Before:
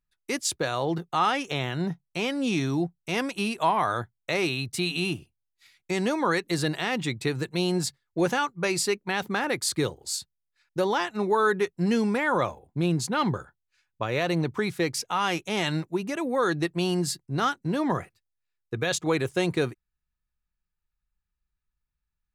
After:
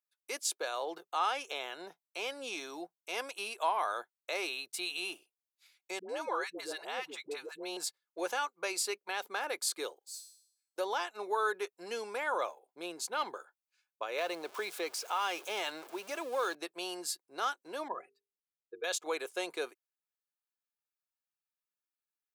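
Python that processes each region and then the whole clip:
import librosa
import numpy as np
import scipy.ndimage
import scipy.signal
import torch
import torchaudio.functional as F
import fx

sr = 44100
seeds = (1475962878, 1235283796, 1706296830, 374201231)

y = fx.chain(x, sr, fx.high_shelf(hz=3100.0, db=-6.5),
    fx.dispersion(late='highs', ms=100.0, hz=560.0), at=(5.99, 7.77))
y = fx.chain(y, sr, fx.law_mismatch(coded='A'),
    fx.high_shelf(hz=2400.0, db=9.0),
    fx.comb_fb(f0_hz=270.0, decay_s=0.67, harmonics='all', damping=0.0, mix_pct=90), at=(9.99, 10.78))
y = fx.chain(y, sr, fx.zero_step(step_db=-35.5),
    fx.high_shelf(hz=6000.0, db=-5.0),
    fx.band_squash(depth_pct=40), at=(14.18, 16.55))
y = fx.chain(y, sr, fx.spec_expand(power=1.8),
    fx.hum_notches(base_hz=50, count=9), at=(17.88, 18.84))
y = scipy.signal.sosfilt(scipy.signal.butter(4, 440.0, 'highpass', fs=sr, output='sos'), y)
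y = fx.high_shelf(y, sr, hz=11000.0, db=8.0)
y = fx.notch(y, sr, hz=1900.0, q=9.2)
y = y * 10.0 ** (-7.5 / 20.0)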